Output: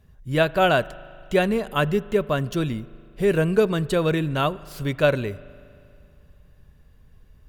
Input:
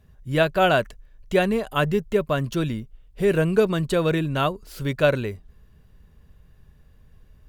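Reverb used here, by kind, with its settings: spring tank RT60 2.5 s, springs 39 ms, chirp 50 ms, DRR 19.5 dB

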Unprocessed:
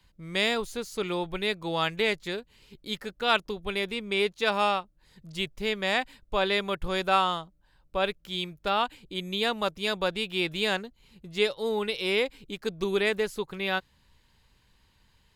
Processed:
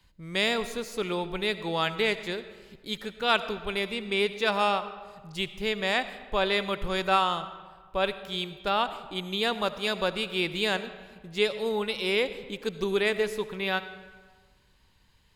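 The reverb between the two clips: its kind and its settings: digital reverb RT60 1.5 s, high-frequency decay 0.65×, pre-delay 35 ms, DRR 12.5 dB

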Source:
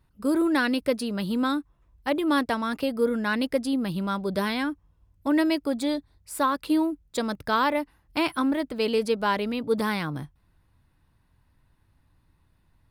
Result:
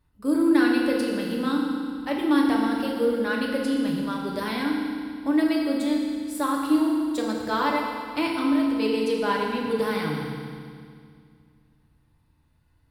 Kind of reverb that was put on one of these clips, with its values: FDN reverb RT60 2.1 s, low-frequency decay 1.3×, high-frequency decay 1×, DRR -2 dB; gain -4.5 dB

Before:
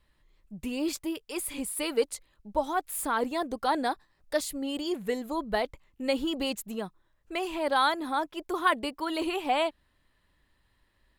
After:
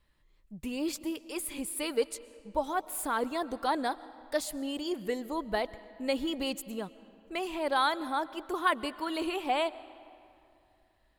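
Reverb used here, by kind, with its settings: digital reverb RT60 2.6 s, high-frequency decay 0.65×, pre-delay 85 ms, DRR 17.5 dB; gain -2.5 dB

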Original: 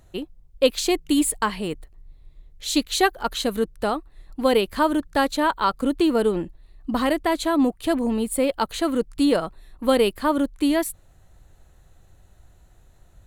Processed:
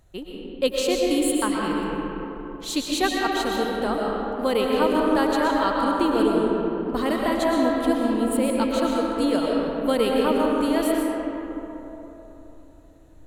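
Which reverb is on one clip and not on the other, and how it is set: digital reverb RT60 3.7 s, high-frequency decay 0.4×, pre-delay 80 ms, DRR -2.5 dB; gain -4.5 dB

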